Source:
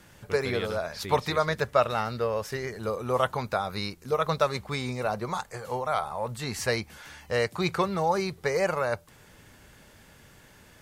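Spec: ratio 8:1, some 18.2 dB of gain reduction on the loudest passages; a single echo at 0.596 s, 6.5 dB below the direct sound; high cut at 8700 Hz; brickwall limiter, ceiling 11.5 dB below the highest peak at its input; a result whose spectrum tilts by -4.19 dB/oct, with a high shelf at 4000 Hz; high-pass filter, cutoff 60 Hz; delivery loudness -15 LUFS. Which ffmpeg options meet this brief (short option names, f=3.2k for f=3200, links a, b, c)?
-af "highpass=60,lowpass=8.7k,highshelf=f=4k:g=5.5,acompressor=threshold=-37dB:ratio=8,alimiter=level_in=8dB:limit=-24dB:level=0:latency=1,volume=-8dB,aecho=1:1:596:0.473,volume=28dB"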